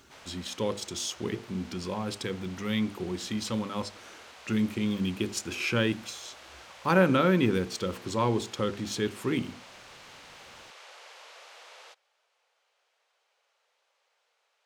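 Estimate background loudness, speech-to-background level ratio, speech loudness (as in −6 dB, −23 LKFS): −49.0 LKFS, 19.0 dB, −30.0 LKFS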